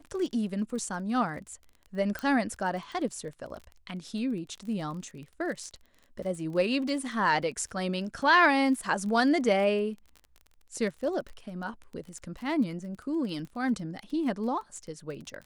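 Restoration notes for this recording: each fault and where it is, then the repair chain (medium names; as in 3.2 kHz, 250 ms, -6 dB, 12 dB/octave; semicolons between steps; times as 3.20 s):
crackle 26 per s -38 dBFS
2.19 s: pop -19 dBFS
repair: de-click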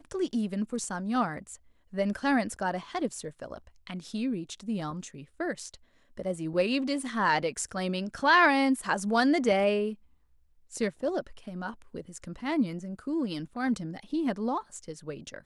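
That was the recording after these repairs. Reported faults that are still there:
nothing left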